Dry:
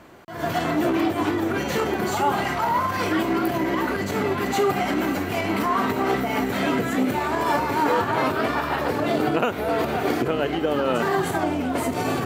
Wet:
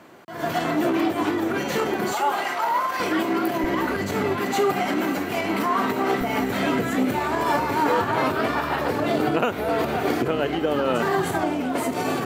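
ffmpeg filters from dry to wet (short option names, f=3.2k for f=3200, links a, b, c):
-af "asetnsamples=n=441:p=0,asendcmd='2.13 highpass f 450;3 highpass f 190;3.64 highpass f 55;4.36 highpass f 150;6.21 highpass f 58;11.43 highpass f 150',highpass=140"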